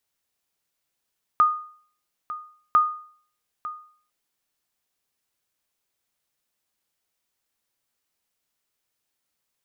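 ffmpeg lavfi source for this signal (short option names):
-f lavfi -i "aevalsrc='0.299*(sin(2*PI*1230*mod(t,1.35))*exp(-6.91*mod(t,1.35)/0.51)+0.168*sin(2*PI*1230*max(mod(t,1.35)-0.9,0))*exp(-6.91*max(mod(t,1.35)-0.9,0)/0.51))':d=2.7:s=44100"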